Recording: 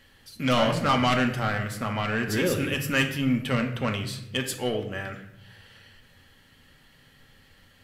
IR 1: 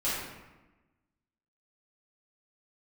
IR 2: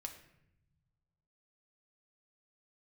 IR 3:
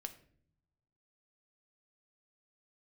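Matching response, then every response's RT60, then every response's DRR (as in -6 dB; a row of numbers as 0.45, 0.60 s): 2; 1.1 s, 0.80 s, not exponential; -11.0, 3.5, 6.5 dB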